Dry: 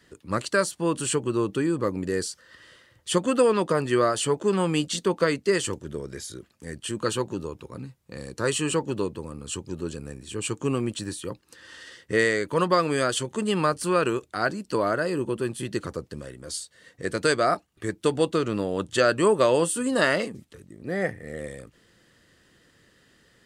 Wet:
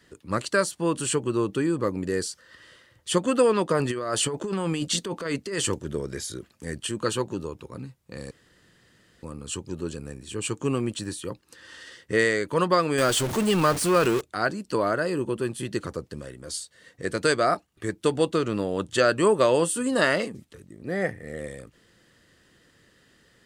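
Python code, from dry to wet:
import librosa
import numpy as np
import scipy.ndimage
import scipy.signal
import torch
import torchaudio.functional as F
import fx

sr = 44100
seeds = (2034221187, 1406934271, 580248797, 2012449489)

y = fx.over_compress(x, sr, threshold_db=-27.0, ratio=-1.0, at=(3.79, 6.87))
y = fx.zero_step(y, sr, step_db=-25.5, at=(12.98, 14.21))
y = fx.edit(y, sr, fx.room_tone_fill(start_s=8.31, length_s=0.92), tone=tone)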